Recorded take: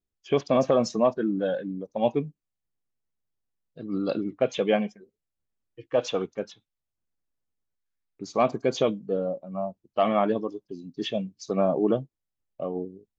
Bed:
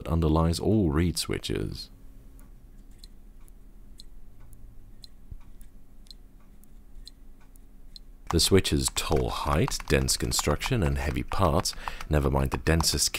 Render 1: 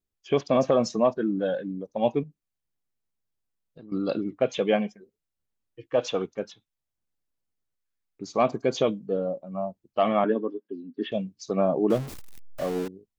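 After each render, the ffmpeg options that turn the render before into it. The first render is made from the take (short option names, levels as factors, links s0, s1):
-filter_complex "[0:a]asettb=1/sr,asplit=3[s0][s1][s2];[s0]atrim=end=2.234[s3];[s1]atrim=start=2.23:end=3.92,asetpts=PTS-STARTPTS,afade=t=in:d=0.004:c=qsin,afade=t=out:st=1.686:d=0.004:c=qsin,acompressor=threshold=0.00794:ratio=6:attack=3.2:release=140:knee=1:detection=peak[s4];[s2]atrim=start=3.916[s5];[s3][s4]acrossfade=d=0.004:c1=hsin:c2=qsin[s6];[s6][s5]acrossfade=d=0.004:c1=qsin:c2=hsin,asettb=1/sr,asplit=3[s7][s8][s9];[s7]atrim=end=10.244[s10];[s8]atrim=start=10.24:end=11.12,asetpts=PTS-STARTPTS,afade=t=in:d=0.004:c=qsin,afade=t=out:st=0.876:d=0.004:c=qsin,highpass=f=220:w=0.5412,highpass=f=220:w=1.3066,equalizer=f=240:t=q:w=4:g=6,equalizer=f=410:t=q:w=4:g=3,equalizer=f=710:t=q:w=4:g=-7,equalizer=f=1000:t=q:w=4:g=-3,equalizer=f=1600:t=q:w=4:g=6,equalizer=f=2400:t=q:w=4:g=-5,lowpass=f=2900:w=0.5412,lowpass=f=2900:w=1.3066[s11];[s9]atrim=start=11.116[s12];[s10][s11]acrossfade=d=0.004:c1=hsin:c2=qsin[s13];[s13][s12]acrossfade=d=0.004:c1=qsin:c2=hsin,asettb=1/sr,asplit=3[s14][s15][s16];[s14]atrim=end=11.904[s17];[s15]atrim=start=11.9:end=12.88,asetpts=PTS-STARTPTS,afade=t=in:d=0.004:c=qsin,afade=t=out:st=0.976:d=0.004:c=qsin,aeval=exprs='val(0)+0.5*0.0266*sgn(val(0))':c=same[s18];[s16]atrim=start=12.876[s19];[s17][s18]acrossfade=d=0.004:c1=hsin:c2=qsin[s20];[s20][s19]acrossfade=d=0.004:c1=qsin:c2=hsin"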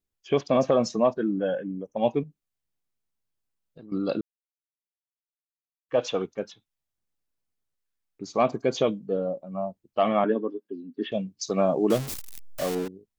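-filter_complex "[0:a]asplit=3[s0][s1][s2];[s0]afade=t=out:st=1.38:d=0.02[s3];[s1]asuperstop=centerf=4300:order=20:qfactor=2.1,afade=t=in:st=1.38:d=0.02,afade=t=out:st=1.95:d=0.02[s4];[s2]afade=t=in:st=1.95:d=0.02[s5];[s3][s4][s5]amix=inputs=3:normalize=0,asettb=1/sr,asplit=3[s6][s7][s8];[s6]atrim=end=11.414[s9];[s7]atrim=start=11.41:end=12.75,asetpts=PTS-STARTPTS,afade=t=in:d=0.004:c=qsin,afade=t=out:st=1.336:d=0.004:c=qsin,highshelf=f=2700:g=11.5[s10];[s8]atrim=start=12.746[s11];[s9][s10]acrossfade=d=0.004:c1=hsin:c2=qsin[s12];[s12][s11]acrossfade=d=0.004:c1=qsin:c2=hsin,asplit=3[s13][s14][s15];[s13]atrim=end=4.21,asetpts=PTS-STARTPTS,afade=t=out:st=4.206:d=0.004:c=hsin[s16];[s14]atrim=start=4.21:end=5.89,asetpts=PTS-STARTPTS,volume=0[s17];[s15]atrim=start=5.89,asetpts=PTS-STARTPTS,afade=t=in:d=0.004:c=hsin[s18];[s16][s17][s18]concat=n=3:v=0:a=1"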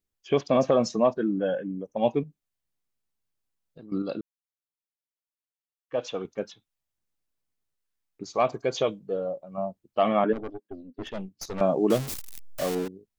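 -filter_complex "[0:a]asettb=1/sr,asplit=3[s0][s1][s2];[s0]atrim=end=8.234[s3];[s1]atrim=start=8.23:end=9.58,asetpts=PTS-STARTPTS,afade=t=in:d=0.004:c=qsin,afade=t=out:st=1.346:d=0.004:c=qsin,equalizer=f=230:w=1.3:g=-9[s4];[s2]atrim=start=9.576[s5];[s3][s4]acrossfade=d=0.004:c1=hsin:c2=qsin[s6];[s6][s5]acrossfade=d=0.004:c1=qsin:c2=hsin,asettb=1/sr,asplit=3[s7][s8][s9];[s7]atrim=end=10.334[s10];[s8]atrim=start=10.33:end=11.61,asetpts=PTS-STARTPTS,afade=t=in:d=0.004:c=qsin,afade=t=out:st=1.276:d=0.004:c=qsin,aeval=exprs='(tanh(31.6*val(0)+0.75)-tanh(0.75))/31.6':c=same[s11];[s9]atrim=start=11.606[s12];[s10][s11]acrossfade=d=0.004:c1=hsin:c2=qsin[s13];[s13][s12]acrossfade=d=0.004:c1=qsin:c2=hsin,asplit=3[s14][s15][s16];[s14]atrim=end=4.022[s17];[s15]atrim=start=4.018:end=6.252,asetpts=PTS-STARTPTS,volume=0.562[s18];[s16]atrim=start=6.248[s19];[s17][s18]acrossfade=d=0.004:c1=hsin:c2=hsin[s20];[s20][s19]acrossfade=d=0.004:c1=hsin:c2=hsin"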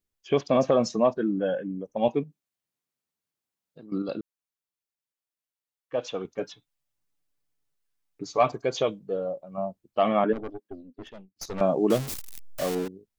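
-filter_complex "[0:a]asettb=1/sr,asplit=3[s0][s1][s2];[s0]atrim=end=2.084[s3];[s1]atrim=start=2.08:end=4.09,asetpts=PTS-STARTPTS,afade=t=in:d=0.004:c=qsin,afade=t=out:st=2.006:d=0.004:c=qsin,highpass=130[s4];[s2]atrim=start=4.086[s5];[s3][s4]acrossfade=d=0.004:c1=hsin:c2=qsin[s6];[s6][s5]acrossfade=d=0.004:c1=qsin:c2=hsin,asettb=1/sr,asplit=3[s7][s8][s9];[s7]atrim=end=6.384[s10];[s8]atrim=start=6.38:end=8.52,asetpts=PTS-STARTPTS,afade=t=in:d=0.004:c=qsin,afade=t=out:st=2.136:d=0.004:c=qsin,aecho=1:1:6.9:0.66,atrim=end_sample=94374[s11];[s9]atrim=start=8.516[s12];[s10][s11]acrossfade=d=0.004:c1=hsin:c2=qsin[s13];[s13][s12]acrossfade=d=0.004:c1=qsin:c2=hsin,asplit=2[s14][s15];[s14]atrim=end=11.36,asetpts=PTS-STARTPTS,afade=t=out:st=10.7:d=0.66[s16];[s15]atrim=start=11.36,asetpts=PTS-STARTPTS,afade=t=in:d=0.004:c=hsin[s17];[s16][s17]concat=n=2:v=0:a=1"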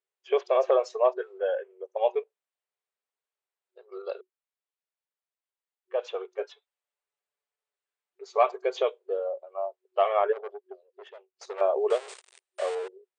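-af "afftfilt=real='re*between(b*sr/4096,370,9200)':imag='im*between(b*sr/4096,370,9200)':win_size=4096:overlap=0.75,equalizer=f=5900:w=1.1:g=-11.5"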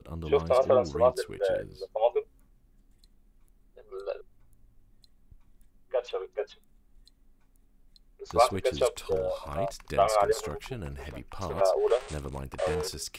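-filter_complex "[1:a]volume=0.237[s0];[0:a][s0]amix=inputs=2:normalize=0"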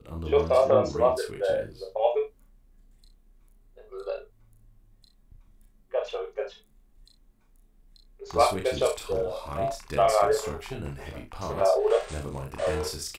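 -filter_complex "[0:a]asplit=2[s0][s1];[s1]adelay=28,volume=0.473[s2];[s0][s2]amix=inputs=2:normalize=0,aecho=1:1:37|62:0.501|0.2"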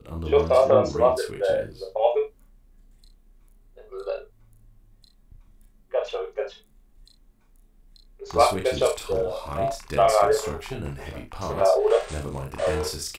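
-af "volume=1.41"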